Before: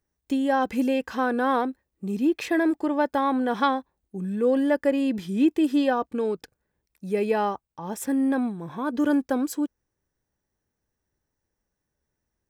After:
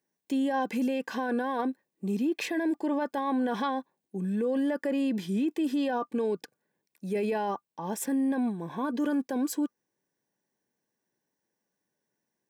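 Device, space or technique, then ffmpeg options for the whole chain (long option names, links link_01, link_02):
PA system with an anti-feedback notch: -af "highpass=frequency=160:width=0.5412,highpass=frequency=160:width=1.3066,asuperstop=centerf=1300:order=20:qfactor=6.1,alimiter=limit=-22dB:level=0:latency=1:release=13"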